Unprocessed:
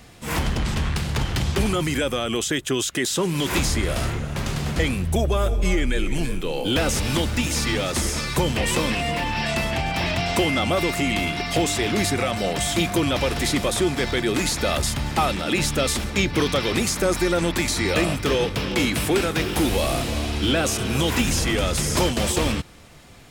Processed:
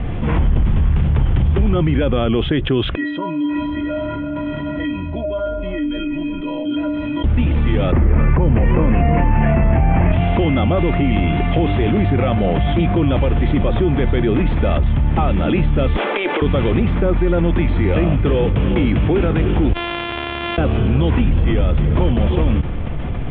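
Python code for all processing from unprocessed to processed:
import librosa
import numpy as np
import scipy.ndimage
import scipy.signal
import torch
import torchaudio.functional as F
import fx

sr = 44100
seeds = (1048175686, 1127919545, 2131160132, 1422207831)

y = fx.chain(x, sr, fx.highpass(hz=110.0, slope=12),
    fx.stiff_resonator(f0_hz=290.0, decay_s=0.54, stiffness=0.03), at=(2.95, 7.24))
y = fx.chain(y, sr, fx.cheby2_lowpass(hz=4500.0, order=4, stop_db=40),
    fx.env_flatten(amount_pct=100), at=(7.92, 10.12))
y = fx.chain(y, sr, fx.highpass(hz=430.0, slope=24),
    fx.over_compress(threshold_db=-27.0, ratio=-0.5), at=(15.97, 16.42))
y = fx.chain(y, sr, fx.sample_sort(block=128),
    fx.bandpass_q(hz=5500.0, q=1.7), at=(19.73, 20.58))
y = scipy.signal.sosfilt(scipy.signal.cheby1(6, 1.0, 3400.0, 'lowpass', fs=sr, output='sos'), y)
y = fx.tilt_eq(y, sr, slope=-3.5)
y = fx.env_flatten(y, sr, amount_pct=70)
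y = y * librosa.db_to_amplitude(-7.0)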